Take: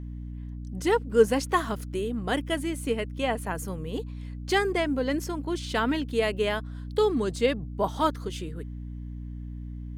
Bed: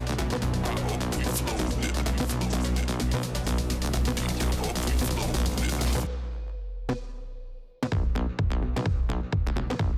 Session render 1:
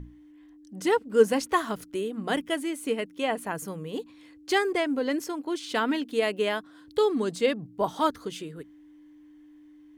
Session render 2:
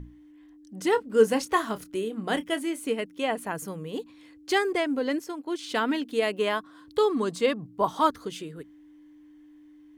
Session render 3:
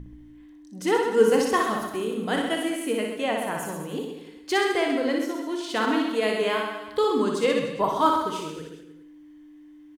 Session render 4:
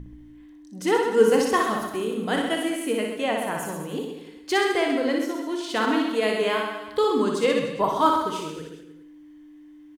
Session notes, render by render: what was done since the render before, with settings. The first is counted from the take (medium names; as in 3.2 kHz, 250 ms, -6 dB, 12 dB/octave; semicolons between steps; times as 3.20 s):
hum notches 60/120/180/240 Hz
0.90–2.80 s: doubling 27 ms -12 dB; 5.18–5.59 s: upward expansion, over -39 dBFS; 6.33–8.15 s: peaking EQ 1.1 kHz +8 dB 0.34 oct
reverse bouncing-ball echo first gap 60 ms, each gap 1.15×, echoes 5; Schroeder reverb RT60 0.74 s, combs from 25 ms, DRR 8 dB
trim +1 dB